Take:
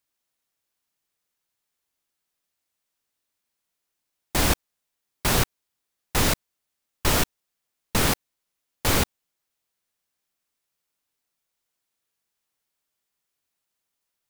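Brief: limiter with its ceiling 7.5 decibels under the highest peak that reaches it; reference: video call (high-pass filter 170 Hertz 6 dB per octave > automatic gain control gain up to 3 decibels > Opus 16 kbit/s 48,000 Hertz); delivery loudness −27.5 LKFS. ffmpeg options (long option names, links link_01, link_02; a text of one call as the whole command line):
ffmpeg -i in.wav -af "alimiter=limit=-15dB:level=0:latency=1,highpass=frequency=170:poles=1,dynaudnorm=maxgain=3dB,volume=2.5dB" -ar 48000 -c:a libopus -b:a 16k out.opus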